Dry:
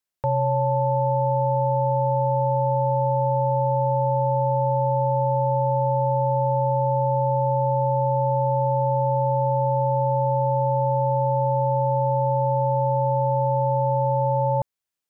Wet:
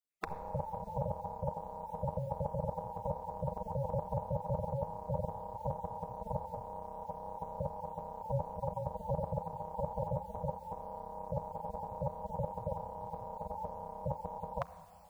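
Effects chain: random holes in the spectrogram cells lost 21%; graphic EQ 125/250/500 Hz -10/-7/-5 dB; peak limiter -25.5 dBFS, peak gain reduction 6.5 dB; reverberation RT60 2.1 s, pre-delay 6 ms, DRR 12 dB; spectral gate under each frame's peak -20 dB weak; trim +17 dB

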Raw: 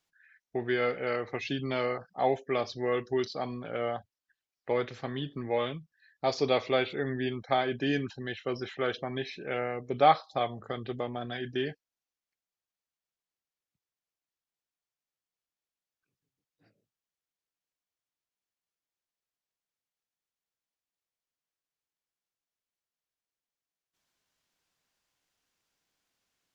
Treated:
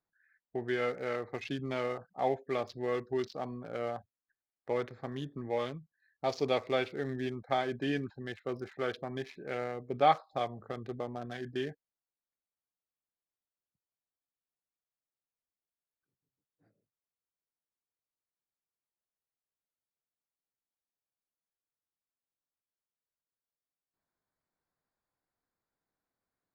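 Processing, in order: local Wiener filter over 15 samples; trim -3.5 dB

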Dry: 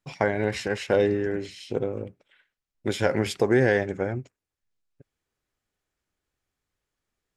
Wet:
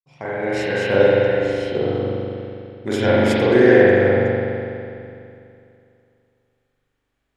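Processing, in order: fade-in on the opening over 0.68 s; spring tank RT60 2.6 s, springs 41 ms, chirp 30 ms, DRR -8.5 dB

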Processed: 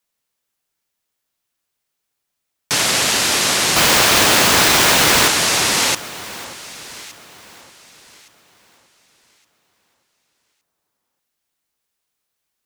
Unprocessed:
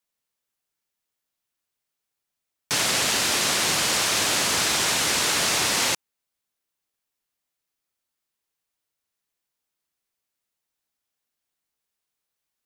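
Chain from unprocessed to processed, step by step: 3.76–5.28 s: square wave that keeps the level; echo whose repeats swap between lows and highs 583 ms, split 1.5 kHz, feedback 52%, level -13 dB; trim +6 dB

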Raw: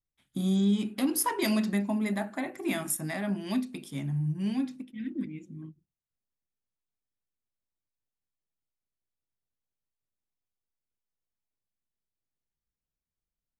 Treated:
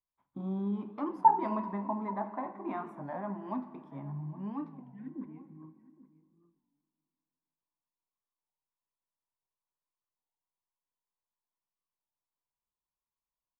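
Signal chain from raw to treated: resonant low-pass 1 kHz, resonance Q 7.1; bass shelf 170 Hz -5.5 dB; echo from a far wall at 140 m, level -18 dB; plate-style reverb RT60 2.3 s, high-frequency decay 0.8×, DRR 11.5 dB; warped record 33 1/3 rpm, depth 160 cents; trim -7 dB

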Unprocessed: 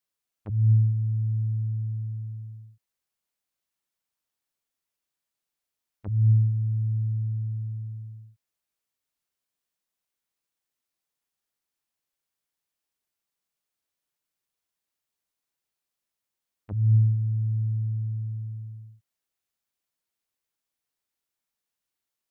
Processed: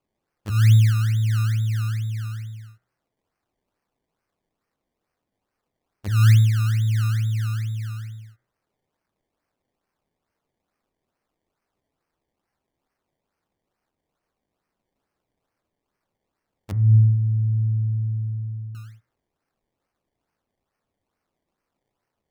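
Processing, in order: decimation with a swept rate 23×, swing 100% 2.3 Hz; 16.71–18.75 s: elliptic low-pass 510 Hz, stop band 60 dB; de-hum 60.98 Hz, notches 36; trim +5.5 dB

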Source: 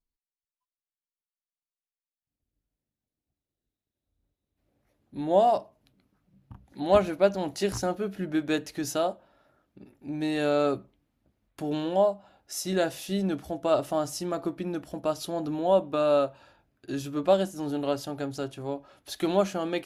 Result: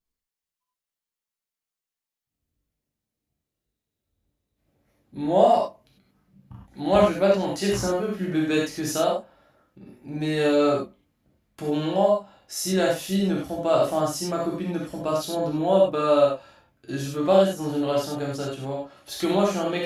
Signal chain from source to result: gated-style reverb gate 120 ms flat, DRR -3.5 dB

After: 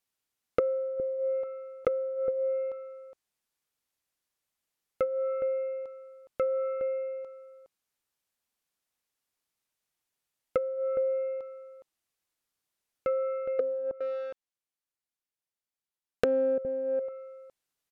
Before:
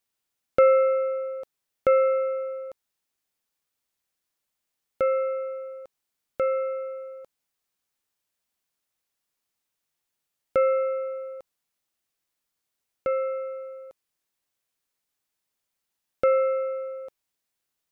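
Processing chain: 13.59–16.58 s: waveshaping leveller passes 5; echo from a far wall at 71 m, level -9 dB; low-pass that closes with the level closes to 330 Hz, closed at -19 dBFS; trim -2.5 dB

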